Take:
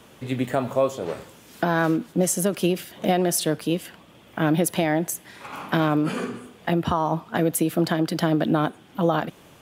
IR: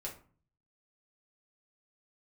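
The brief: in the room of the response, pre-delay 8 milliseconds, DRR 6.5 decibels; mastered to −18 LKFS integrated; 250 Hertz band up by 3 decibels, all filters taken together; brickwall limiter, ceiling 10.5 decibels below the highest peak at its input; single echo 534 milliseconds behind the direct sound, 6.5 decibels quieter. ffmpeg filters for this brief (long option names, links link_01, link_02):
-filter_complex "[0:a]equalizer=frequency=250:width_type=o:gain=4.5,alimiter=limit=-18.5dB:level=0:latency=1,aecho=1:1:534:0.473,asplit=2[link_01][link_02];[1:a]atrim=start_sample=2205,adelay=8[link_03];[link_02][link_03]afir=irnorm=-1:irlink=0,volume=-5.5dB[link_04];[link_01][link_04]amix=inputs=2:normalize=0,volume=10dB"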